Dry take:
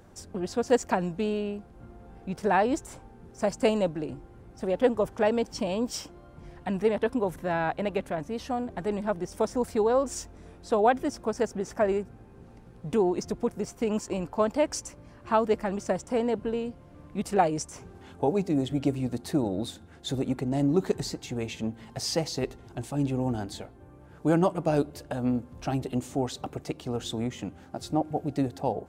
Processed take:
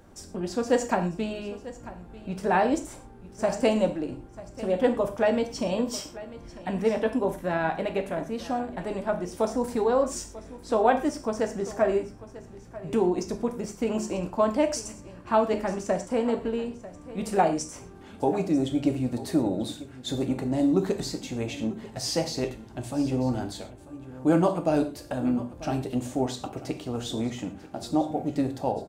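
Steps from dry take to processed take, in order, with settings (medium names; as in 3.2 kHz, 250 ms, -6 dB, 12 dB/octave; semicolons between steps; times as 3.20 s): on a send: delay 943 ms -17 dB; on the sum: gated-style reverb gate 150 ms falling, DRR 5 dB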